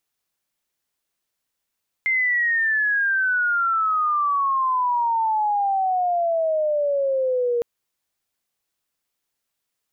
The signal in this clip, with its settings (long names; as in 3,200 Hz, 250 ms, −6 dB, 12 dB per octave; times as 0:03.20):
glide logarithmic 2,100 Hz → 470 Hz −17.5 dBFS → −18.5 dBFS 5.56 s